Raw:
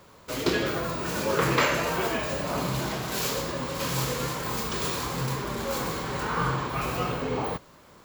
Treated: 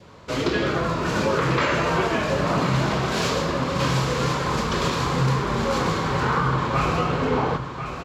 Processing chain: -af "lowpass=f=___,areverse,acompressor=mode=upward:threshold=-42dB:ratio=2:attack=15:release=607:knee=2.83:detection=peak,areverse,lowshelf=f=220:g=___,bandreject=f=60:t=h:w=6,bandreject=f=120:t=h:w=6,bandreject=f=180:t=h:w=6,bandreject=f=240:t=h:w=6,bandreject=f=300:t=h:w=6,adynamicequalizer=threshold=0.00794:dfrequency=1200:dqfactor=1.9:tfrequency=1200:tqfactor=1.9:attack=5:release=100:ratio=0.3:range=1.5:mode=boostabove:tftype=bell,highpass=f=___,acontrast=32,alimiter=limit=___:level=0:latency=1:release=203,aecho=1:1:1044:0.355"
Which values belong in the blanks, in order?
5.5k, 6.5, 50, -12.5dB